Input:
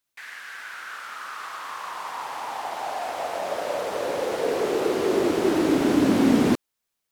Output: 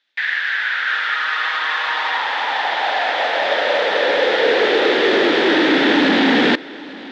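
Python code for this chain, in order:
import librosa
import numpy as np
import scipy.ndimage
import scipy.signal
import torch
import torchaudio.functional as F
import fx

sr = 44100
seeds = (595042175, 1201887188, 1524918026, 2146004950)

p1 = fx.comb(x, sr, ms=6.4, depth=0.54, at=(0.87, 2.18))
p2 = fx.fold_sine(p1, sr, drive_db=10, ceiling_db=-6.5)
p3 = p1 + (p2 * 10.0 ** (-7.0 / 20.0))
p4 = fx.quant_float(p3, sr, bits=2)
p5 = fx.cabinet(p4, sr, low_hz=380.0, low_slope=12, high_hz=4200.0, hz=(380.0, 670.0, 1100.0, 1800.0, 3500.0), db=(-5, -6, -9, 9, 8))
p6 = p5 + fx.echo_single(p5, sr, ms=843, db=-19.0, dry=0)
y = p6 * 10.0 ** (4.0 / 20.0)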